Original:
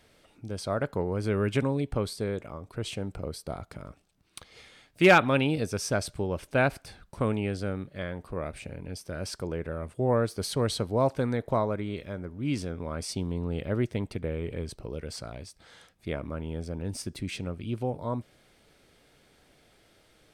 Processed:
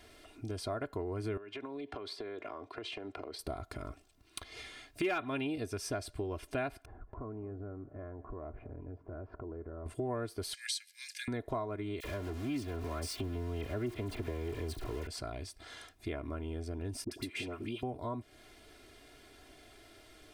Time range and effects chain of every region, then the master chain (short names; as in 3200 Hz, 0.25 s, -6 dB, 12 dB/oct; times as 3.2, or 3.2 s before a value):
1.37–3.39 HPF 100 Hz + three-band isolator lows -14 dB, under 290 Hz, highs -22 dB, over 4900 Hz + compressor 16:1, threshold -39 dBFS
6.85–9.86 LPF 1200 Hz 24 dB/oct + compressor 3:1, threshold -46 dBFS + echo 0.214 s -19 dB
10.54–11.28 rippled Chebyshev high-pass 1600 Hz, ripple 6 dB + bell 7500 Hz +11.5 dB 2.9 oct
12–15.07 zero-crossing step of -35.5 dBFS + dispersion lows, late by 43 ms, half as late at 2000 Hz + Doppler distortion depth 0.1 ms
17.04–17.83 HPF 280 Hz 6 dB/oct + dispersion highs, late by 75 ms, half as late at 940 Hz + three-band squash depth 100%
whole clip: comb 2.9 ms, depth 75%; dynamic EQ 6500 Hz, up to -5 dB, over -52 dBFS, Q 1.1; compressor 3:1, threshold -40 dBFS; gain +2 dB